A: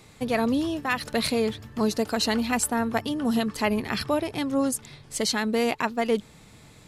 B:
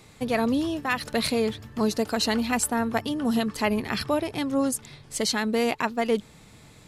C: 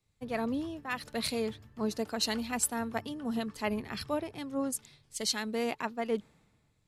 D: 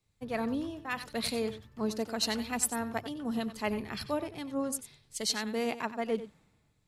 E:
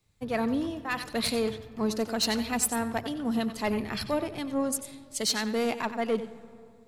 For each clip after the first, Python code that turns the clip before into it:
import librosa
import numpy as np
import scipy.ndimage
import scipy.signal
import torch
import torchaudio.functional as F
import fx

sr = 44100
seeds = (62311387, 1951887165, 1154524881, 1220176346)

y1 = x
y2 = fx.band_widen(y1, sr, depth_pct=70)
y2 = y2 * 10.0 ** (-8.5 / 20.0)
y3 = y2 + 10.0 ** (-13.0 / 20.0) * np.pad(y2, (int(93 * sr / 1000.0), 0))[:len(y2)]
y4 = 10.0 ** (-23.5 / 20.0) * np.tanh(y3 / 10.0 ** (-23.5 / 20.0))
y4 = fx.rev_freeverb(y4, sr, rt60_s=2.6, hf_ratio=0.35, predelay_ms=95, drr_db=18.5)
y4 = y4 * 10.0 ** (5.5 / 20.0)